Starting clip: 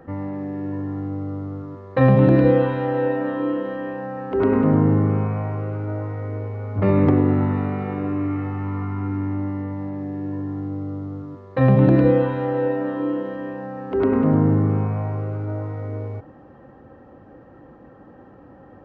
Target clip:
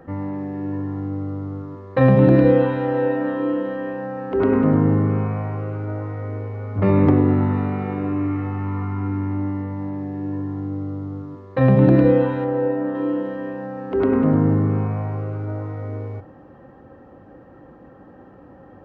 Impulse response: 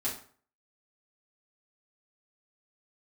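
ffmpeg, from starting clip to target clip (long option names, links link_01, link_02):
-filter_complex "[0:a]asettb=1/sr,asplit=3[link_01][link_02][link_03];[link_01]atrim=end=12.444[link_04];[link_02]atrim=start=12.44:end=12.95,asetpts=PTS-STARTPTS,afade=type=in:duration=0.004:curve=qsin,afade=type=out:start_time=0.506:duration=0.004:curve=qsin,lowpass=frequency=1500:poles=1[link_05];[link_03]atrim=start=12.946[link_06];[link_04][link_05]acrossfade=duration=0.004:curve1=hsin:curve2=qsin[link_07];[link_07][link_06]acrossfade=duration=0.004:curve1=qsin:curve2=hsin,asplit=2[link_08][link_09];[1:a]atrim=start_sample=2205,asetrate=30870,aresample=44100[link_10];[link_09][link_10]afir=irnorm=-1:irlink=0,volume=-21dB[link_11];[link_08][link_11]amix=inputs=2:normalize=0"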